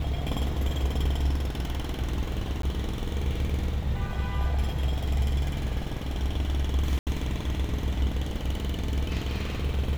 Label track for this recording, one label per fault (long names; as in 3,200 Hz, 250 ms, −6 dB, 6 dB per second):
2.620000	2.630000	drop-out 13 ms
6.990000	7.070000	drop-out 78 ms